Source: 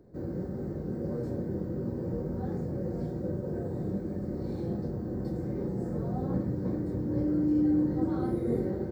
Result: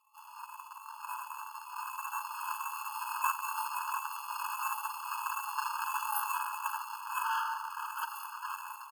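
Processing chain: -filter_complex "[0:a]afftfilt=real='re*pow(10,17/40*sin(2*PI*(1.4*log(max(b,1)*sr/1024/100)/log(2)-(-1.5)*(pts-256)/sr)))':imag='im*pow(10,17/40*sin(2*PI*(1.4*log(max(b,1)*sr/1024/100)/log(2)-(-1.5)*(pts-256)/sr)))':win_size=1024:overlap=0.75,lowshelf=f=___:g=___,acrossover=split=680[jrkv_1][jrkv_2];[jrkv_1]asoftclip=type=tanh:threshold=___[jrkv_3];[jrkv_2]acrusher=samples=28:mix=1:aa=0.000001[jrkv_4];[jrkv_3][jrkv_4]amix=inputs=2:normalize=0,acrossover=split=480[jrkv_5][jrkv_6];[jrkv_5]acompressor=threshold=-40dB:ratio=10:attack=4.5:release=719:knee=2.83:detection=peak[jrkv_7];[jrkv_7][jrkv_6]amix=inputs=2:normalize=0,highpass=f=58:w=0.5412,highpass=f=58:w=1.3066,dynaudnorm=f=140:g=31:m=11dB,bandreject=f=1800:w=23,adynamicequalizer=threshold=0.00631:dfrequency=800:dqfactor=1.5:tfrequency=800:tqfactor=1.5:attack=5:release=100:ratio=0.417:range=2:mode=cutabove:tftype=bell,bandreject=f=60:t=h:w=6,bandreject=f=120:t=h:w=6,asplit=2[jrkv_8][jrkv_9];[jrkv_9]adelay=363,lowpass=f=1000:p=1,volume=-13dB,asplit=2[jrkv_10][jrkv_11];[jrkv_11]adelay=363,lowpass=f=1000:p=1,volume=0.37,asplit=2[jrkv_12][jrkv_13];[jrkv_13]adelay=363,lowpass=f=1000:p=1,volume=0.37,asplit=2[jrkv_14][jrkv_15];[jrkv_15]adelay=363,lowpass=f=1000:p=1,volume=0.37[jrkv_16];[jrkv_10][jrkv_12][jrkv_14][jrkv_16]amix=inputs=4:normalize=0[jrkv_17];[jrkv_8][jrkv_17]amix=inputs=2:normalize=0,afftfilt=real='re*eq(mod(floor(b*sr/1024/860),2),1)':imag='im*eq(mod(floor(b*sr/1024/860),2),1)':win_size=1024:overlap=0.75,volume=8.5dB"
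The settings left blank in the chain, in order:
140, 11, -28dB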